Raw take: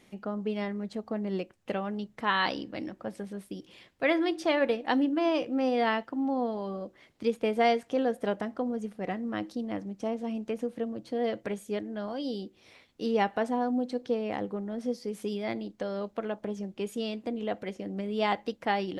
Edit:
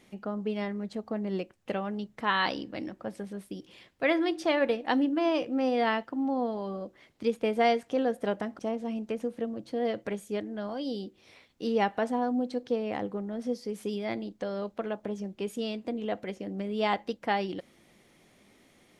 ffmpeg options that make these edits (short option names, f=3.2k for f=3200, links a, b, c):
-filter_complex "[0:a]asplit=2[a][b];[a]atrim=end=8.592[c];[b]atrim=start=9.978[d];[c][d]acrossfade=d=0.004:c1=hsin:c2=hsin"